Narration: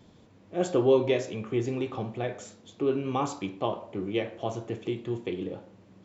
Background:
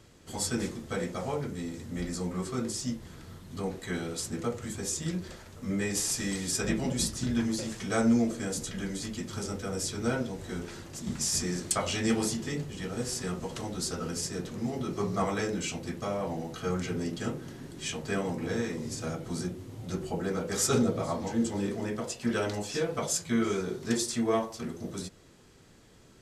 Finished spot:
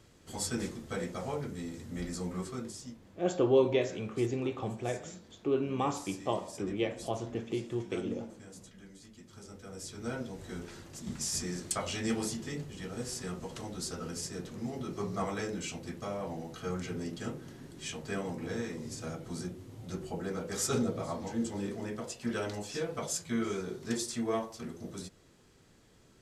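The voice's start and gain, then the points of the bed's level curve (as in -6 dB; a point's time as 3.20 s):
2.65 s, -3.0 dB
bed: 2.40 s -3.5 dB
3.15 s -18 dB
9.13 s -18 dB
10.38 s -5 dB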